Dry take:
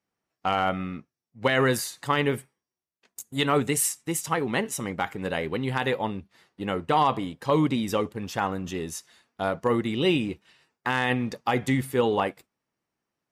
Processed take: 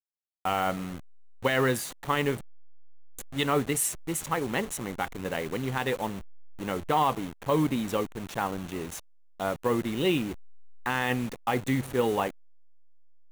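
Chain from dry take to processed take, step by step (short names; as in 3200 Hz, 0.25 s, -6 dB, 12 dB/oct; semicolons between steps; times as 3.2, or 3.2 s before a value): level-crossing sampler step -32.5 dBFS; bell 5000 Hz -6.5 dB 0.26 oct; gain -2.5 dB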